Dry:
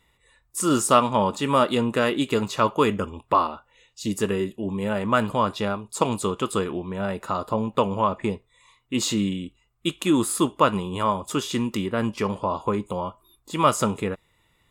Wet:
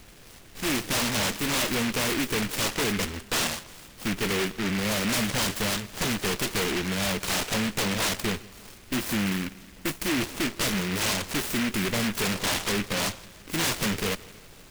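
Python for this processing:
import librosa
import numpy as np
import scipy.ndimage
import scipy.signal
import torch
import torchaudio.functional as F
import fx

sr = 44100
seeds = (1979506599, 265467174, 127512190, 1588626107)

p1 = scipy.signal.sosfilt(scipy.signal.butter(4, 63.0, 'highpass', fs=sr, output='sos'), x)
p2 = fx.peak_eq(p1, sr, hz=1800.0, db=6.5, octaves=1.4)
p3 = fx.rider(p2, sr, range_db=10, speed_s=2.0)
p4 = p2 + F.gain(torch.from_numpy(p3), 1.0).numpy()
p5 = fx.tube_stage(p4, sr, drive_db=24.0, bias=0.6)
p6 = fx.dmg_noise_colour(p5, sr, seeds[0], colour='pink', level_db=-49.0)
p7 = p6 + fx.echo_feedback(p6, sr, ms=165, feedback_pct=56, wet_db=-21.0, dry=0)
p8 = np.repeat(scipy.signal.resample_poly(p7, 1, 6), 6)[:len(p7)]
y = fx.noise_mod_delay(p8, sr, seeds[1], noise_hz=2000.0, depth_ms=0.29)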